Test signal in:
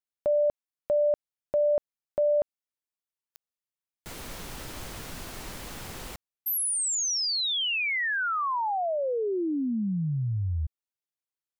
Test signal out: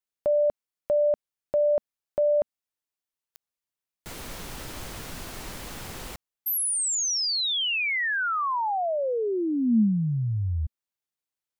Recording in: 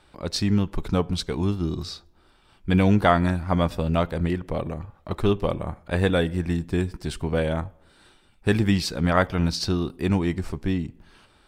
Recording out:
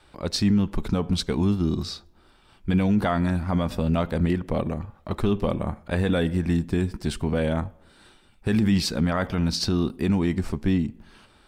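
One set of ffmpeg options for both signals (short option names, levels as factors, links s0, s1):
-af "adynamicequalizer=threshold=0.01:dfrequency=220:dqfactor=3.8:tfrequency=220:tqfactor=3.8:attack=5:release=100:ratio=0.375:range=4:mode=boostabove:tftype=bell,alimiter=limit=0.178:level=0:latency=1:release=37,volume=1.19"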